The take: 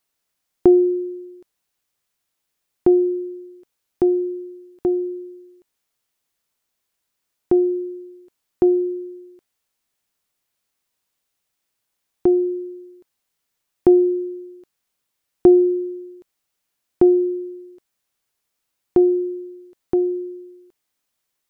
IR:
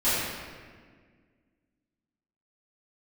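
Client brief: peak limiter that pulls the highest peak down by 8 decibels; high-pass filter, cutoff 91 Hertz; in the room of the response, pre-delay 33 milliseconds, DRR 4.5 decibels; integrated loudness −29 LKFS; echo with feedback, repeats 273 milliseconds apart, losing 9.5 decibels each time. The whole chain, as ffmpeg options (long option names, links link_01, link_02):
-filter_complex "[0:a]highpass=91,alimiter=limit=-11dB:level=0:latency=1,aecho=1:1:273|546|819|1092:0.335|0.111|0.0365|0.012,asplit=2[link_01][link_02];[1:a]atrim=start_sample=2205,adelay=33[link_03];[link_02][link_03]afir=irnorm=-1:irlink=0,volume=-19dB[link_04];[link_01][link_04]amix=inputs=2:normalize=0,volume=-9.5dB"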